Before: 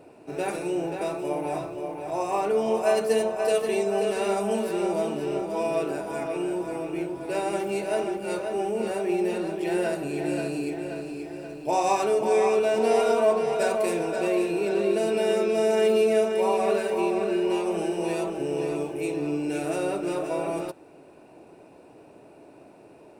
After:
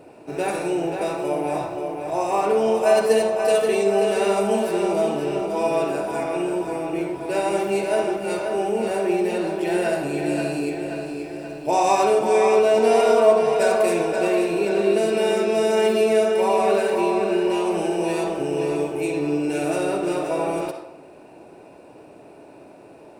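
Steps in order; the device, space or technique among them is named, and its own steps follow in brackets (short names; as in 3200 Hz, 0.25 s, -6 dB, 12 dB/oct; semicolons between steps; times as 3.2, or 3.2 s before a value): filtered reverb send (on a send: HPF 510 Hz 12 dB/oct + LPF 8400 Hz + reverb RT60 0.75 s, pre-delay 48 ms, DRR 4 dB); on the sum: gain +4 dB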